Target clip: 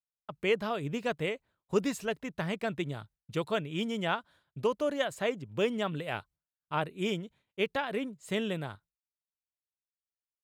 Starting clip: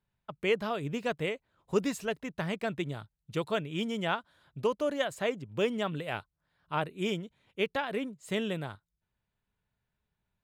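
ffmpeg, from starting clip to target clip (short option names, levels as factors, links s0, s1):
-af "agate=range=0.0224:threshold=0.00224:ratio=3:detection=peak"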